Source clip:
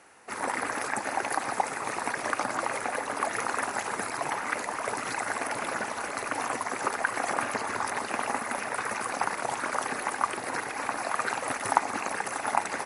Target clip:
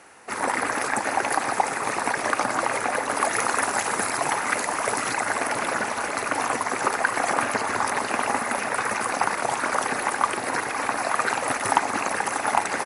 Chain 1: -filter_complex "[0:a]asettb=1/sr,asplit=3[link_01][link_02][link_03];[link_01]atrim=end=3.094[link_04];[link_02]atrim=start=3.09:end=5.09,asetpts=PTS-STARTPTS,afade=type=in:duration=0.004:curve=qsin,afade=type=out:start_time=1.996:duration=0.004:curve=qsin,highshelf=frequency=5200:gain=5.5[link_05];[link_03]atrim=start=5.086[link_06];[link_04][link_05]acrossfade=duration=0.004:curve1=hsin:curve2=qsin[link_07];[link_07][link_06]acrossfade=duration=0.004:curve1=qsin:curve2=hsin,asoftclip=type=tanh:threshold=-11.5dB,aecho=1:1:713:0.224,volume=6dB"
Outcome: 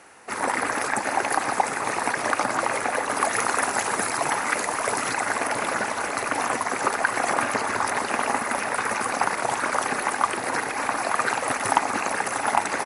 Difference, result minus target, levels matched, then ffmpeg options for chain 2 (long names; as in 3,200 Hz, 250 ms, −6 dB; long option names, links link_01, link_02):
echo 204 ms late
-filter_complex "[0:a]asettb=1/sr,asplit=3[link_01][link_02][link_03];[link_01]atrim=end=3.094[link_04];[link_02]atrim=start=3.09:end=5.09,asetpts=PTS-STARTPTS,afade=type=in:duration=0.004:curve=qsin,afade=type=out:start_time=1.996:duration=0.004:curve=qsin,highshelf=frequency=5200:gain=5.5[link_05];[link_03]atrim=start=5.086[link_06];[link_04][link_05]acrossfade=duration=0.004:curve1=hsin:curve2=qsin[link_07];[link_07][link_06]acrossfade=duration=0.004:curve1=qsin:curve2=hsin,asoftclip=type=tanh:threshold=-11.5dB,aecho=1:1:509:0.224,volume=6dB"